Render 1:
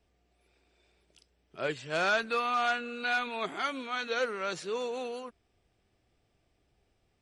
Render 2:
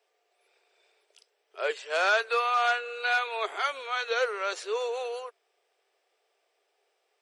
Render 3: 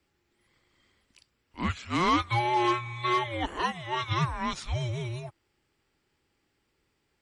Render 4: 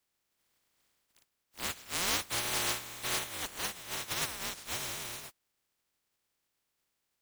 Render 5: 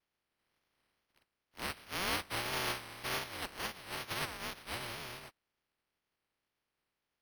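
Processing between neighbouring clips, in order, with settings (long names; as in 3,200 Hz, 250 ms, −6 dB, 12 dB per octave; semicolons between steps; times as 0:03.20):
elliptic high-pass filter 420 Hz, stop band 50 dB; level +4 dB
frequency shifter −360 Hz
compressing power law on the bin magnitudes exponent 0.16; level −7 dB
bad sample-rate conversion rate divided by 6×, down filtered, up hold; tape wow and flutter 82 cents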